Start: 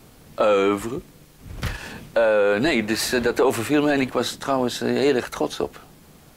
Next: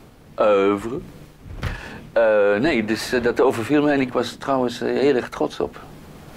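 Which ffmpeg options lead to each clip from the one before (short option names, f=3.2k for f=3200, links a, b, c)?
-af "highshelf=f=4.1k:g=-11,bandreject=f=60:t=h:w=6,bandreject=f=120:t=h:w=6,bandreject=f=180:t=h:w=6,bandreject=f=240:t=h:w=6,areverse,acompressor=mode=upward:threshold=-34dB:ratio=2.5,areverse,volume=2dB"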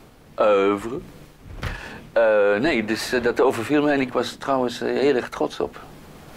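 -af "equalizer=f=110:w=0.36:g=-3.5"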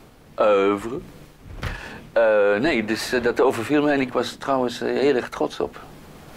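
-af anull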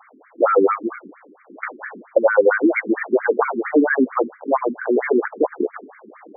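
-filter_complex "[0:a]acrossover=split=130|400|3900[a][b][c][d];[b]acrusher=samples=17:mix=1:aa=0.000001:lfo=1:lforange=17:lforate=1.2[e];[d]aexciter=amount=10.7:drive=4.5:freq=9.7k[f];[a][e][c][f]amix=inputs=4:normalize=0,afftfilt=real='re*between(b*sr/1024,280*pow(1700/280,0.5+0.5*sin(2*PI*4.4*pts/sr))/1.41,280*pow(1700/280,0.5+0.5*sin(2*PI*4.4*pts/sr))*1.41)':imag='im*between(b*sr/1024,280*pow(1700/280,0.5+0.5*sin(2*PI*4.4*pts/sr))/1.41,280*pow(1700/280,0.5+0.5*sin(2*PI*4.4*pts/sr))*1.41)':win_size=1024:overlap=0.75,volume=8.5dB"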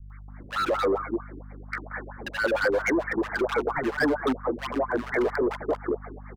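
-filter_complex "[0:a]aeval=exprs='val(0)+0.0112*(sin(2*PI*50*n/s)+sin(2*PI*2*50*n/s)/2+sin(2*PI*3*50*n/s)/3+sin(2*PI*4*50*n/s)/4+sin(2*PI*5*50*n/s)/5)':c=same,asoftclip=type=hard:threshold=-18dB,acrossover=split=170|1100[a][b][c];[c]adelay=100[d];[b]adelay=280[e];[a][e][d]amix=inputs=3:normalize=0,volume=-2dB"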